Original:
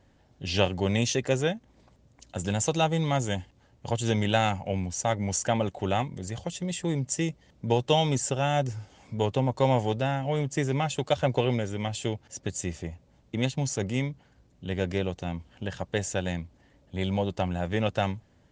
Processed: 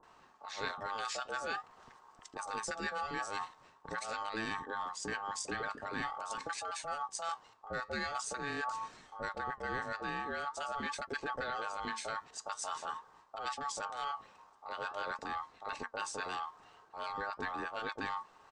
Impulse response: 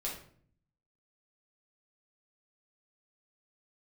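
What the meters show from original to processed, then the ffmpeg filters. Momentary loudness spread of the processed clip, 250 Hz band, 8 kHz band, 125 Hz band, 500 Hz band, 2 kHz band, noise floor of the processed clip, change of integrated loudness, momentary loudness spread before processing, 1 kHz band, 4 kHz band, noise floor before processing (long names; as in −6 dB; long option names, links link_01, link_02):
8 LU, −18.0 dB, −10.0 dB, −27.5 dB, −15.5 dB, −3.0 dB, −63 dBFS, −11.0 dB, 11 LU, −5.0 dB, −11.0 dB, −62 dBFS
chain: -filter_complex "[0:a]aeval=exprs='val(0)*sin(2*PI*1000*n/s)':channel_layout=same,acrossover=split=890[link_01][link_02];[link_02]adelay=30[link_03];[link_01][link_03]amix=inputs=2:normalize=0,areverse,acompressor=threshold=-42dB:ratio=6,areverse,flanger=delay=2.9:depth=6.8:regen=81:speed=0.45:shape=sinusoidal,volume=10dB"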